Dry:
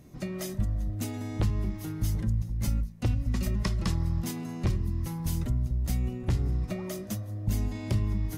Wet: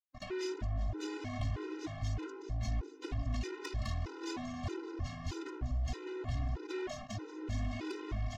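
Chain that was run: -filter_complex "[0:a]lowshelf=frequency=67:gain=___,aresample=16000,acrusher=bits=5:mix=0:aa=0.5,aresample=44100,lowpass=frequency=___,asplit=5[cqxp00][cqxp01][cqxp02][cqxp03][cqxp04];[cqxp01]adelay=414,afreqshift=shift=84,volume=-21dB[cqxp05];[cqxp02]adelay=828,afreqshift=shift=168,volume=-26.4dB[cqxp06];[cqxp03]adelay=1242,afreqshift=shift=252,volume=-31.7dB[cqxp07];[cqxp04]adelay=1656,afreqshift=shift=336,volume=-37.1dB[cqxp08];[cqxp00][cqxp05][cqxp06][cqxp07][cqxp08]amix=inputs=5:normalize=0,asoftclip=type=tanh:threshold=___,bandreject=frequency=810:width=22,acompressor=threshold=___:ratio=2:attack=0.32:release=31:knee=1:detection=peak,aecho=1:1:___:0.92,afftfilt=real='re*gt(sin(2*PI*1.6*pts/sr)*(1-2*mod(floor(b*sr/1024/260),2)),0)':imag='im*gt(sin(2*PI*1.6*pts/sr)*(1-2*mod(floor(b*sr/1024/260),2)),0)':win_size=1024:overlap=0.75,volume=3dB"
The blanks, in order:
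-10.5, 5400, -29dB, -41dB, 2.8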